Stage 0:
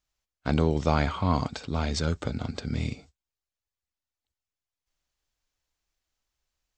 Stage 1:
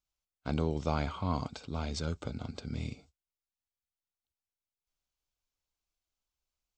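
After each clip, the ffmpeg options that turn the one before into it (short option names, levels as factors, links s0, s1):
-af "equalizer=f=1800:t=o:w=0.22:g=-10,volume=0.422"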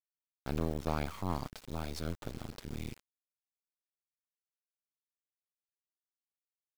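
-af "acrusher=bits=5:dc=4:mix=0:aa=0.000001,volume=0.841"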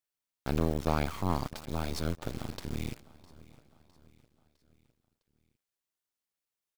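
-af "aecho=1:1:657|1314|1971|2628:0.0891|0.0437|0.0214|0.0105,volume=1.78"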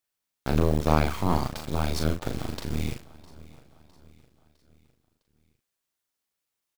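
-filter_complex "[0:a]asplit=2[s0][s1];[s1]adelay=39,volume=0.531[s2];[s0][s2]amix=inputs=2:normalize=0,volume=1.78"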